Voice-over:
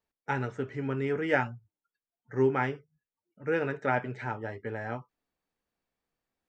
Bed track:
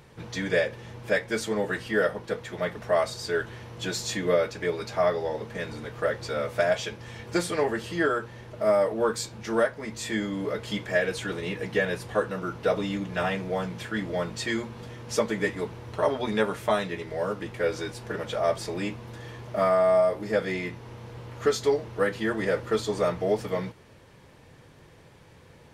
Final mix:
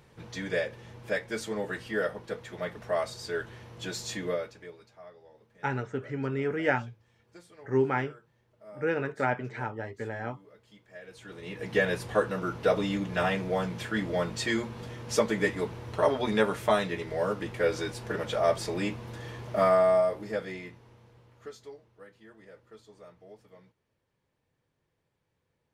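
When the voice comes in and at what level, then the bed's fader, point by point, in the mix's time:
5.35 s, 0.0 dB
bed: 0:04.24 −5.5 dB
0:04.97 −26 dB
0:10.86 −26 dB
0:11.79 0 dB
0:19.75 0 dB
0:21.99 −26 dB

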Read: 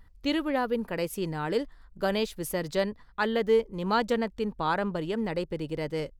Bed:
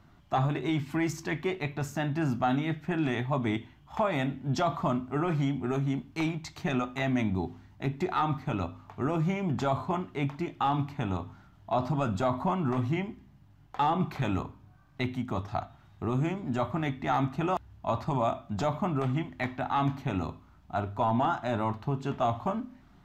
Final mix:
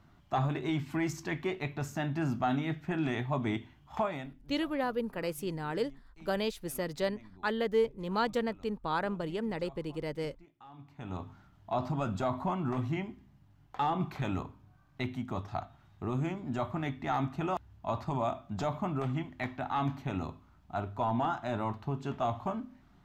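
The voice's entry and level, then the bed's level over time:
4.25 s, −4.5 dB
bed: 0:04.02 −3 dB
0:04.52 −26 dB
0:10.69 −26 dB
0:11.21 −4 dB

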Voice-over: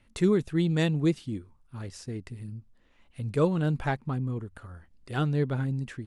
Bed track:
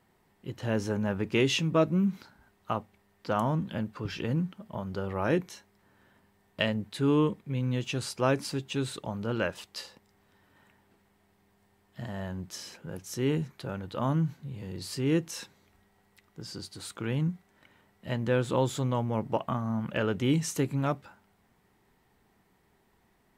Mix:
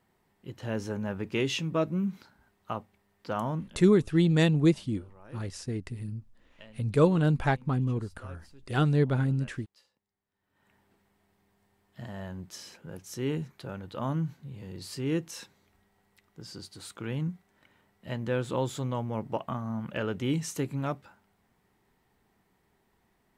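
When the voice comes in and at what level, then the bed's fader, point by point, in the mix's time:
3.60 s, +2.5 dB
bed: 0:03.59 −3.5 dB
0:03.85 −23.5 dB
0:10.29 −23.5 dB
0:10.74 −3 dB

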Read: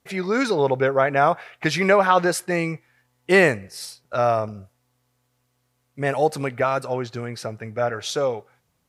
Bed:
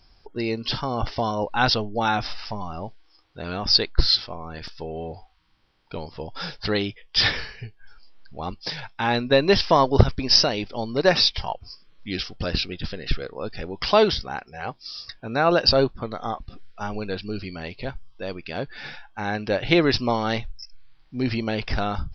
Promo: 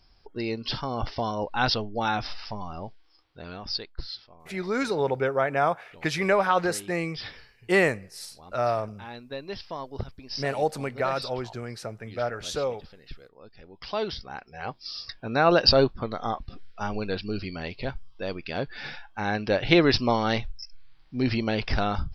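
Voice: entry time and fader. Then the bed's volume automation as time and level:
4.40 s, −5.5 dB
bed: 0:03.19 −4 dB
0:04.08 −18.5 dB
0:13.53 −18.5 dB
0:14.83 −0.5 dB

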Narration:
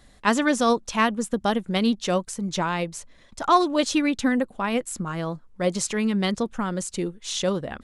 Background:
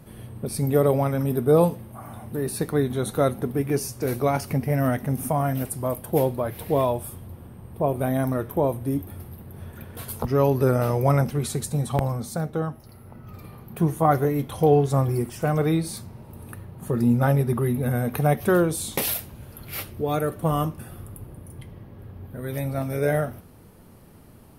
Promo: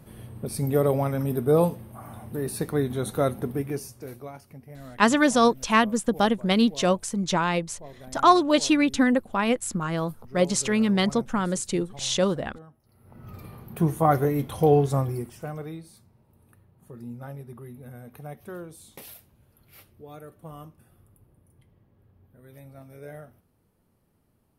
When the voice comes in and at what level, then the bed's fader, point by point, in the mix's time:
4.75 s, +1.5 dB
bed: 0:03.52 −2.5 dB
0:04.45 −21 dB
0:12.80 −21 dB
0:13.24 −1 dB
0:14.85 −1 dB
0:15.92 −19 dB

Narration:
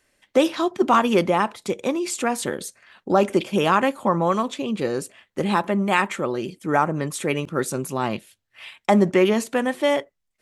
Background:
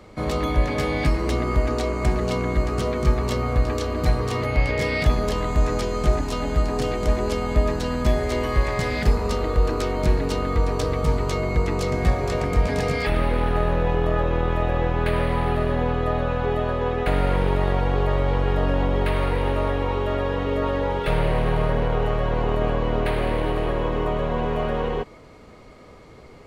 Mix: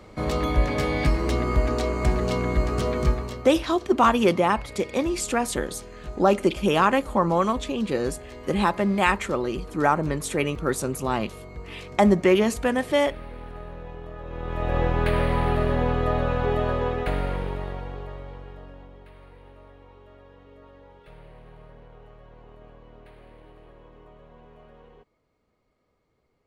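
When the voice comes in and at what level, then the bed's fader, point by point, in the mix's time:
3.10 s, −1.0 dB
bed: 0:03.04 −1 dB
0:03.54 −17.5 dB
0:14.18 −17.5 dB
0:14.77 −0.5 dB
0:16.75 −0.5 dB
0:19.03 −26.5 dB

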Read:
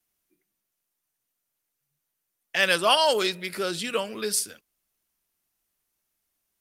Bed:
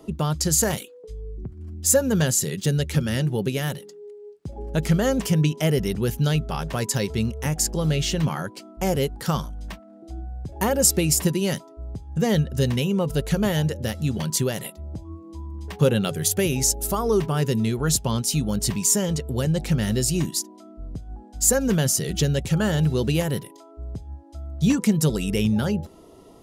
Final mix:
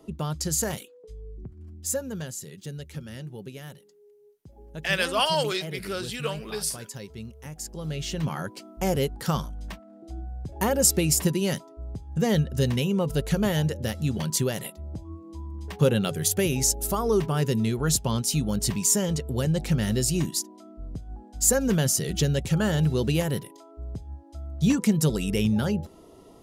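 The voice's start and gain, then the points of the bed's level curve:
2.30 s, −3.5 dB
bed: 0:01.59 −6 dB
0:02.31 −15 dB
0:07.52 −15 dB
0:08.48 −2 dB

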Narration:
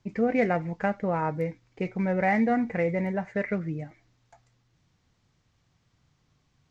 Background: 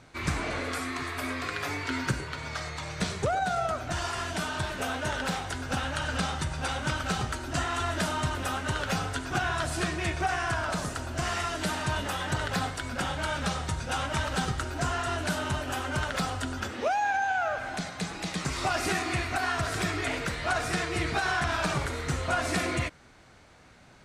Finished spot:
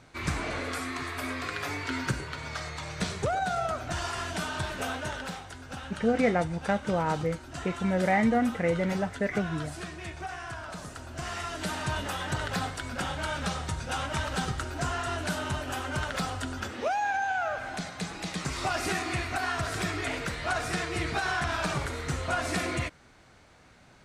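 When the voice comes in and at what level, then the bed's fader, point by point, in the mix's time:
5.85 s, −0.5 dB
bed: 0:04.89 −1 dB
0:05.50 −9.5 dB
0:10.71 −9.5 dB
0:11.84 −1.5 dB

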